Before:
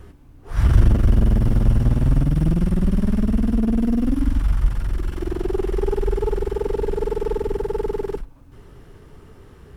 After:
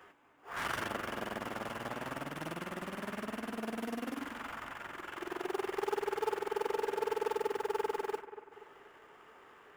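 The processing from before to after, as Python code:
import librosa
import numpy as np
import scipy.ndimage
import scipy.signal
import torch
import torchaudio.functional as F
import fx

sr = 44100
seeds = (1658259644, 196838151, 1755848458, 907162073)

p1 = fx.wiener(x, sr, points=9)
p2 = scipy.signal.sosfilt(scipy.signal.butter(2, 1000.0, 'highpass', fs=sr, output='sos'), p1)
p3 = fx.mod_noise(p2, sr, seeds[0], snr_db=34)
p4 = fx.sample_hold(p3, sr, seeds[1], rate_hz=2000.0, jitter_pct=0)
p5 = p3 + (p4 * 10.0 ** (-12.0 / 20.0))
p6 = fx.echo_bbd(p5, sr, ms=240, stages=4096, feedback_pct=50, wet_db=-13.0)
y = p6 * 10.0 ** (2.0 / 20.0)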